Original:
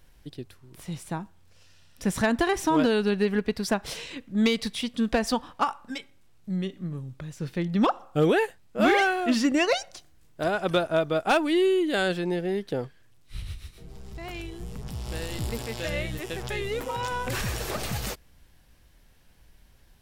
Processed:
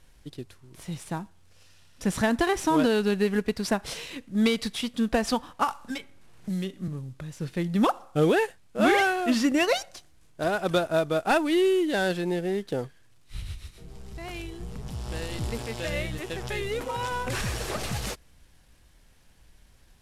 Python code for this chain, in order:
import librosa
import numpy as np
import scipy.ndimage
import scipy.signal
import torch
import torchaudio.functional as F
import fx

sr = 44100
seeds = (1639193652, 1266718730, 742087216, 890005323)

y = fx.cvsd(x, sr, bps=64000)
y = fx.band_squash(y, sr, depth_pct=70, at=(5.68, 6.88))